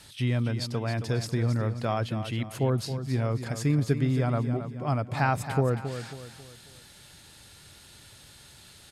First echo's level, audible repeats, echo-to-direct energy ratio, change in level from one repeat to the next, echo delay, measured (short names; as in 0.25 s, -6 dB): -10.0 dB, 4, -9.5 dB, -8.0 dB, 0.271 s